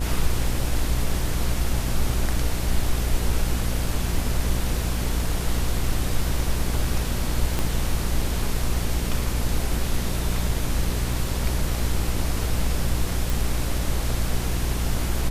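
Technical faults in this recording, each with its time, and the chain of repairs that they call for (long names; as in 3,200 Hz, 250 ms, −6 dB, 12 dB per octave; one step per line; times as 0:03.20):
mains buzz 60 Hz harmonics 16 −27 dBFS
0:07.59: click −10 dBFS
0:13.30: click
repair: click removal
hum removal 60 Hz, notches 16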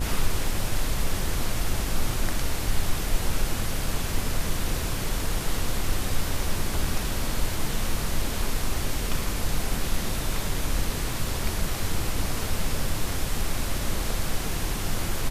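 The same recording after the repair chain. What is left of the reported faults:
0:07.59: click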